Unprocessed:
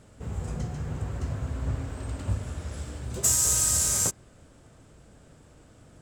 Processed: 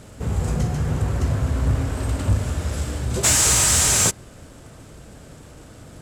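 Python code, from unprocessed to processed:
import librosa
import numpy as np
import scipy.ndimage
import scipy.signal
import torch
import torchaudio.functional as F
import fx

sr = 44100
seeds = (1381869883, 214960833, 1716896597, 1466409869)

y = fx.cvsd(x, sr, bps=64000)
y = fx.cheby_harmonics(y, sr, harmonics=(5,), levels_db=(-22,), full_scale_db=-15.0)
y = y * librosa.db_to_amplitude(8.0)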